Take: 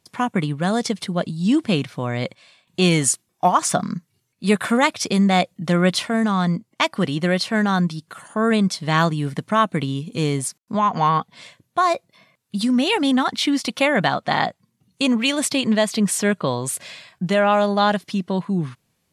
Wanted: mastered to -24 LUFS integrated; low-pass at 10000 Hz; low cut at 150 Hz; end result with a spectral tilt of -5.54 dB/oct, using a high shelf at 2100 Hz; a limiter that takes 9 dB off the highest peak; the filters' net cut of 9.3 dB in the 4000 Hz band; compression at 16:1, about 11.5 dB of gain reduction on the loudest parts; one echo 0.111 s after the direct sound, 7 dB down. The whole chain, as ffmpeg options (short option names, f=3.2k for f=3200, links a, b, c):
-af "highpass=150,lowpass=10k,highshelf=f=2.1k:g=-8,equalizer=f=4k:t=o:g=-4.5,acompressor=threshold=-25dB:ratio=16,alimiter=limit=-22dB:level=0:latency=1,aecho=1:1:111:0.447,volume=8dB"